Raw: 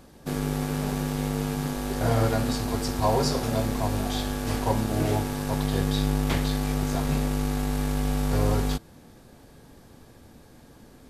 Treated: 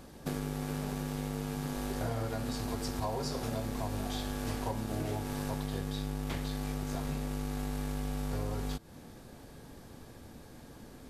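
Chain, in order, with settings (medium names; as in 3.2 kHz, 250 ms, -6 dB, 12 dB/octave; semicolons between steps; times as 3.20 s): compression 6:1, threshold -32 dBFS, peak gain reduction 13.5 dB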